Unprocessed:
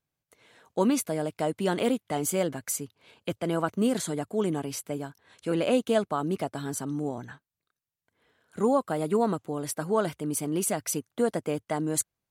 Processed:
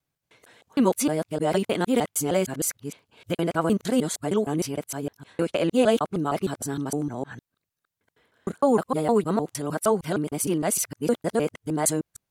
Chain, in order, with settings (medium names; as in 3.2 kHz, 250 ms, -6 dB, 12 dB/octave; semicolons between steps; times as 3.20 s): time reversed locally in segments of 154 ms; trim +3.5 dB